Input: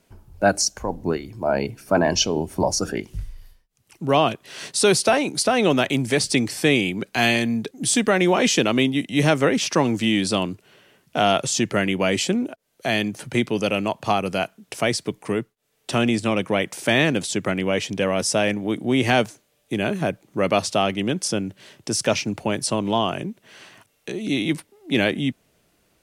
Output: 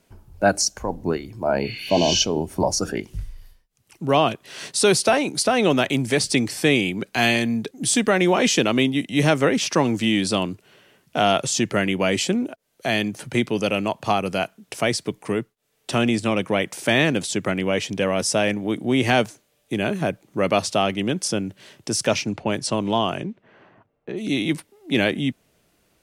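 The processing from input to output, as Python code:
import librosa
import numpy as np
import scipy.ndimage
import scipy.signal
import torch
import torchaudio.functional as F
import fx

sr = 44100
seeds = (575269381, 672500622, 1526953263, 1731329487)

y = fx.spec_repair(x, sr, seeds[0], start_s=1.67, length_s=0.5, low_hz=1100.0, high_hz=9300.0, source='both')
y = fx.env_lowpass(y, sr, base_hz=870.0, full_db=-18.5, at=(22.11, 24.16), fade=0.02)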